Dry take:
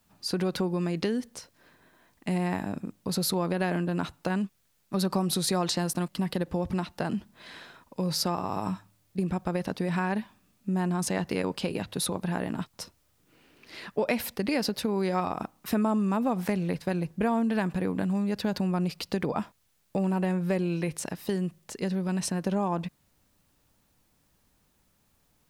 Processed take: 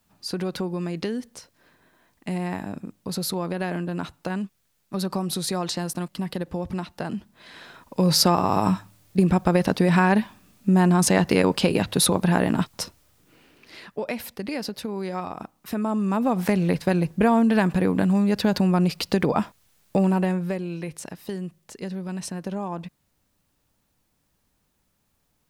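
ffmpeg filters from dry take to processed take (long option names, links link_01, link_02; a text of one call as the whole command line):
ffmpeg -i in.wav -af "volume=20dB,afade=type=in:start_time=7.53:duration=0.57:silence=0.316228,afade=type=out:start_time=12.71:duration=1.17:silence=0.237137,afade=type=in:start_time=15.7:duration=0.98:silence=0.316228,afade=type=out:start_time=20:duration=0.59:silence=0.316228" out.wav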